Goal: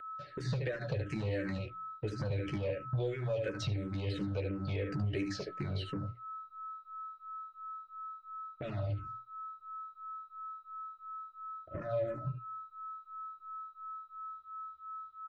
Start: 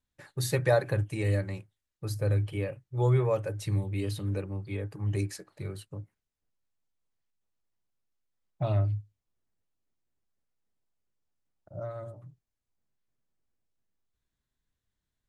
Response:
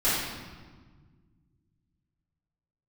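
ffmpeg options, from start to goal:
-filter_complex "[0:a]agate=range=-14dB:threshold=-47dB:ratio=16:detection=peak,bandreject=f=60:t=h:w=6,bandreject=f=120:t=h:w=6,bandreject=f=180:t=h:w=6,asplit=2[a][b];[b]adelay=14,volume=-7.5dB[c];[a][c]amix=inputs=2:normalize=0,asplit=2[d][e];[e]alimiter=limit=-20.5dB:level=0:latency=1:release=173,volume=2dB[f];[d][f]amix=inputs=2:normalize=0,lowpass=f=5.1k:w=0.5412,lowpass=f=5.1k:w=1.3066,asplit=2[g][h];[h]aecho=0:1:73:0.355[i];[g][i]amix=inputs=2:normalize=0,aeval=exprs='val(0)+0.00447*sin(2*PI*1300*n/s)':c=same,acrossover=split=1300|3000[j][k][l];[j]acompressor=threshold=-28dB:ratio=4[m];[k]acompressor=threshold=-43dB:ratio=4[n];[l]acompressor=threshold=-50dB:ratio=4[o];[m][n][o]amix=inputs=3:normalize=0,asuperstop=centerf=980:order=12:qfactor=1.8,acompressor=threshold=-37dB:ratio=6,asoftclip=type=tanh:threshold=-35dB,asplit=2[p][q];[q]afreqshift=-2.9[r];[p][r]amix=inputs=2:normalize=1,volume=9.5dB"

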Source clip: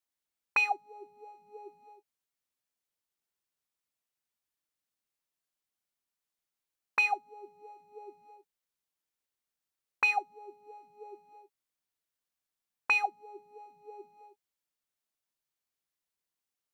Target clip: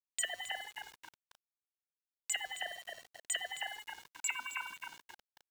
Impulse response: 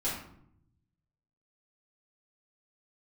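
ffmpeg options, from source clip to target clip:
-filter_complex "[0:a]highpass=170,bandreject=f=258.5:t=h:w=4,bandreject=f=517:t=h:w=4,bandreject=f=775.5:t=h:w=4,areverse,acompressor=threshold=-40dB:ratio=12,areverse,aeval=exprs='val(0)+0.0002*sin(2*PI*1100*n/s)':c=same,asetrate=134064,aresample=44100,asplit=2[a][b];[b]adelay=267,lowpass=f=2.6k:p=1,volume=-4dB,asplit=2[c][d];[d]adelay=267,lowpass=f=2.6k:p=1,volume=0.52,asplit=2[e][f];[f]adelay=267,lowpass=f=2.6k:p=1,volume=0.52,asplit=2[g][h];[h]adelay=267,lowpass=f=2.6k:p=1,volume=0.52,asplit=2[i][j];[j]adelay=267,lowpass=f=2.6k:p=1,volume=0.52,asplit=2[k][l];[l]adelay=267,lowpass=f=2.6k:p=1,volume=0.52,asplit=2[m][n];[n]adelay=267,lowpass=f=2.6k:p=1,volume=0.52[o];[a][c][e][g][i][k][m][o]amix=inputs=8:normalize=0,aeval=exprs='val(0)*gte(abs(val(0)),0.00133)':c=same,aeval=exprs='val(0)*sin(2*PI*420*n/s+420*0.4/0.33*sin(2*PI*0.33*n/s))':c=same,volume=11dB"

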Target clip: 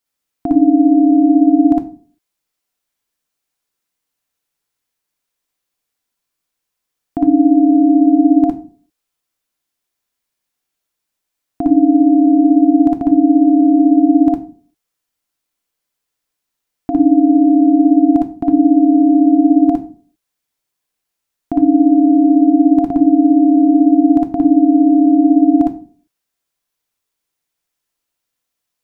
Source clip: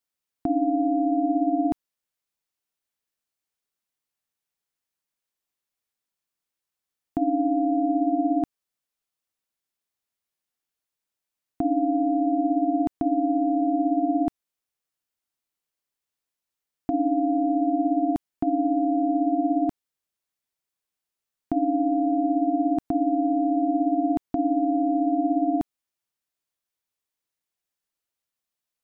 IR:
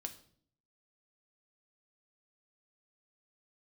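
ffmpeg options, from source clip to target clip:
-filter_complex "[0:a]asplit=2[a][b];[1:a]atrim=start_sample=2205,asetrate=66150,aresample=44100,adelay=58[c];[b][c]afir=irnorm=-1:irlink=0,volume=7dB[d];[a][d]amix=inputs=2:normalize=0,volume=5.5dB"

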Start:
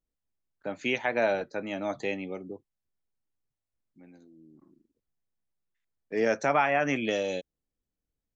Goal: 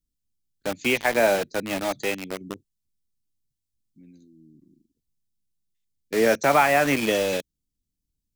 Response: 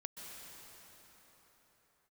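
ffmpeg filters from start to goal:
-filter_complex "[0:a]asettb=1/sr,asplit=3[a][b][c];[a]atrim=end=1.804[d];[b]atrim=start=1.8:end=2.41,asetpts=PTS-STARTPTS,afade=t=in:d=0.004:c=qsin,afade=t=out:st=0.606:d=0.004:c=qsin,lowshelf=f=350:g=-5.5[e];[c]atrim=start=2.406[f];[d][e]acrossfade=d=0.004:c1=hsin:c2=qsin[g];[g][f]acrossfade=d=0.004:c1=qsin:c2=hsin,acrossover=split=330|3000[h][i][j];[i]acrusher=bits=5:mix=0:aa=0.000001[k];[h][k][j]amix=inputs=3:normalize=0,volume=6dB"

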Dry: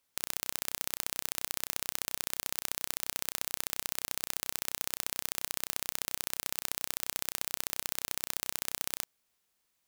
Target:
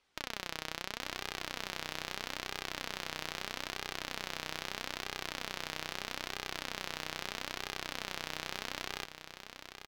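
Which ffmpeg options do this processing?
-filter_complex "[0:a]lowpass=4.1k,alimiter=limit=-22dB:level=0:latency=1:release=18,volume=25dB,asoftclip=hard,volume=-25dB,flanger=delay=2.4:depth=4:regen=59:speed=0.78:shape=sinusoidal,asplit=2[a][b];[b]aecho=0:1:845|1690|2535:0.335|0.0804|0.0193[c];[a][c]amix=inputs=2:normalize=0,volume=12.5dB"

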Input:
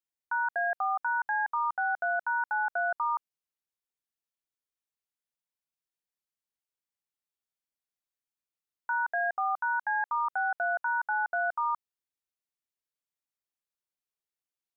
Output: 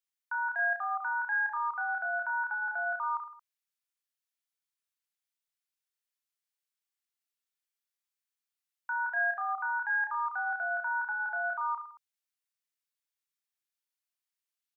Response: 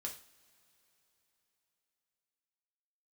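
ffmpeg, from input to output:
-af "highpass=1.3k,aecho=1:1:30|66|109.2|161|223.2:0.631|0.398|0.251|0.158|0.1"

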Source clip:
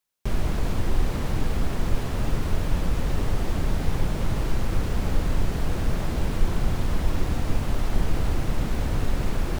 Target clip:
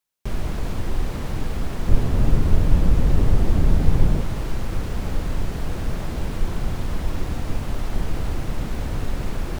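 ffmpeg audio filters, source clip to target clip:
-filter_complex "[0:a]asettb=1/sr,asplit=3[a][b][c];[a]atrim=end=1.884[d];[b]atrim=start=1.88:end=4.21,asetpts=PTS-STARTPTS,afade=t=in:d=0.004:c=qsin,afade=t=out:st=2.326:d=0.004:c=qsin,lowshelf=f=490:g=9[e];[c]atrim=start=4.206[f];[d][e]acrossfade=d=0.004:c1=hsin:c2=qsin[g];[g][f]acrossfade=d=0.004:c1=qsin:c2=hsin,volume=-1dB"

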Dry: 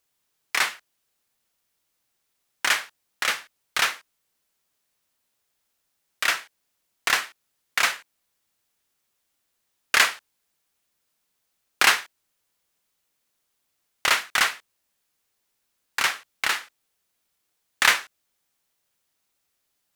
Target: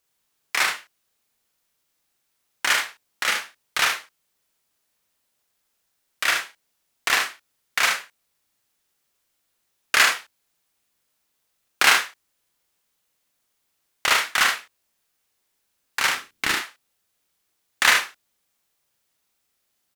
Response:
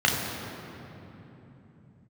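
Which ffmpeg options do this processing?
-filter_complex "[0:a]asettb=1/sr,asplit=3[a][b][c];[a]atrim=end=16.084[d];[b]atrim=start=16.08:end=16.54,asetpts=PTS-STARTPTS,afade=t=in:d=0.004:c=qsin,afade=t=out:st=0.456:d=0.004:c=qsin,lowshelf=f=440:t=q:w=1.5:g=8.5[e];[c]atrim=start=16.536[f];[d][e]acrossfade=d=0.004:c1=hsin:c2=qsin[g];[g][f]acrossfade=d=0.004:c1=qsin:c2=hsin,asplit=2[h][i];[i]aecho=0:1:42|75:0.596|0.473[j];[h][j]amix=inputs=2:normalize=0"

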